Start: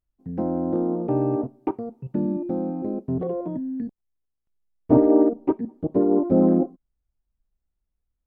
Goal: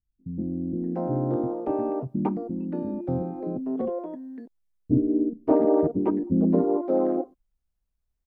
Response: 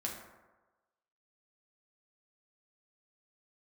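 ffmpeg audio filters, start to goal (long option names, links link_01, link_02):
-filter_complex "[0:a]acrossover=split=310[link_01][link_02];[link_02]adelay=580[link_03];[link_01][link_03]amix=inputs=2:normalize=0"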